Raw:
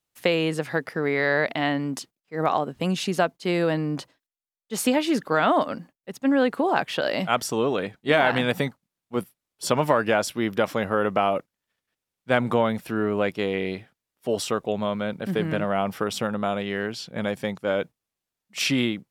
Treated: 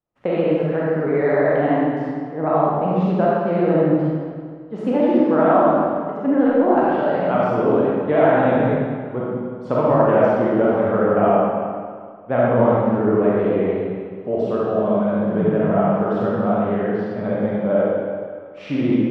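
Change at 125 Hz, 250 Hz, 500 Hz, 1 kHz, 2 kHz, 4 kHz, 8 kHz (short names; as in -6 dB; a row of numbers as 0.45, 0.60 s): +7.5 dB, +7.5 dB, +8.0 dB, +5.5 dB, -2.5 dB, under -10 dB, under -25 dB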